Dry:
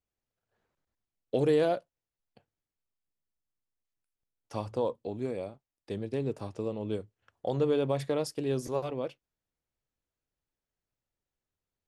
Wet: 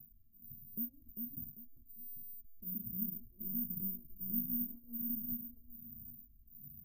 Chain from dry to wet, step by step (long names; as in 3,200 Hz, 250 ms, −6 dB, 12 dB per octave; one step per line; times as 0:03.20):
converter with a step at zero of −41 dBFS
mains-hum notches 50/100/150 Hz
noise gate with hold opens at −41 dBFS
Chebyshev band-stop filter 140–7,800 Hz, order 5
harmonic and percussive parts rebalanced percussive +9 dB
downward compressor 3 to 1, threshold −58 dBFS, peak gain reduction 19.5 dB
repeating echo 686 ms, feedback 32%, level −5 dB
wrong playback speed 45 rpm record played at 78 rpm
bad sample-rate conversion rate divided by 3×, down filtered, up zero stuff
phaser with staggered stages 1.3 Hz
level +12 dB